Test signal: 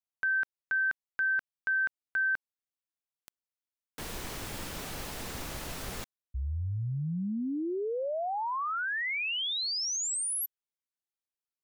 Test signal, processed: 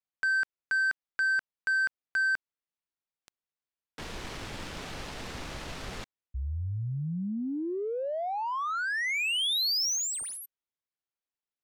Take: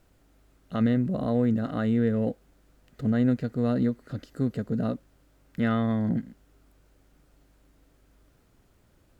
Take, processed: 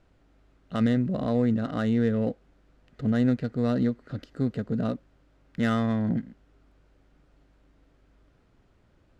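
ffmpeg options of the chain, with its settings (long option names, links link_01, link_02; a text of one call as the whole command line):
ffmpeg -i in.wav -af "adynamicsmooth=sensitivity=7:basefreq=2900,highshelf=frequency=3000:gain=9" out.wav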